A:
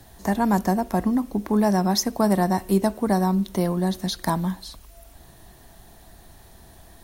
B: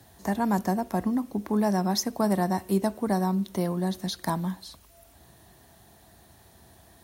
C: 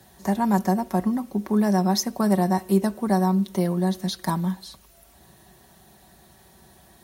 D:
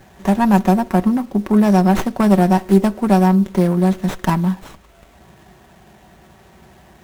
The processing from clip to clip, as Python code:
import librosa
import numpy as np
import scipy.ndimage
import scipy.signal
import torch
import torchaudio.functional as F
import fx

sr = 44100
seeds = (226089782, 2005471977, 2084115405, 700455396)

y1 = scipy.signal.sosfilt(scipy.signal.butter(4, 63.0, 'highpass', fs=sr, output='sos'), x)
y1 = y1 * librosa.db_to_amplitude(-4.5)
y2 = y1 + 0.51 * np.pad(y1, (int(5.3 * sr / 1000.0), 0))[:len(y1)]
y2 = y2 * librosa.db_to_amplitude(1.5)
y3 = fx.running_max(y2, sr, window=9)
y3 = y3 * librosa.db_to_amplitude(7.5)